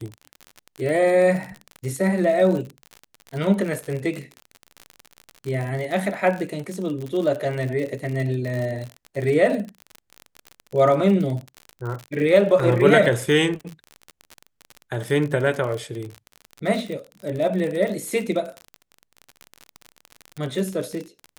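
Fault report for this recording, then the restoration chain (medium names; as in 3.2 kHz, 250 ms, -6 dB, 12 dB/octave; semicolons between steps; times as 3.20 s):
crackle 45 per s -27 dBFS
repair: de-click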